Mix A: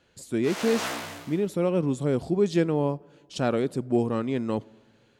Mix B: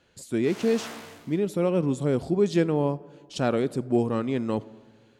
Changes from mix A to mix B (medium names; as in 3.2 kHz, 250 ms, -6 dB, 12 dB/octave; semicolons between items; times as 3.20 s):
speech: send +6.5 dB; background -8.0 dB